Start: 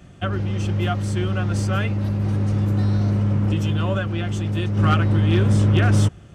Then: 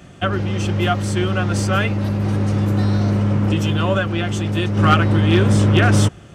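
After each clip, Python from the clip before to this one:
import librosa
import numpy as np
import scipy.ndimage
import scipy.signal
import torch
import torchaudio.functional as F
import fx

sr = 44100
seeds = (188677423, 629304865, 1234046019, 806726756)

y = fx.low_shelf(x, sr, hz=150.0, db=-8.5)
y = y * librosa.db_to_amplitude(7.0)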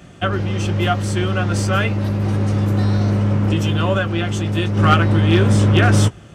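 y = fx.doubler(x, sr, ms=18.0, db=-13.0)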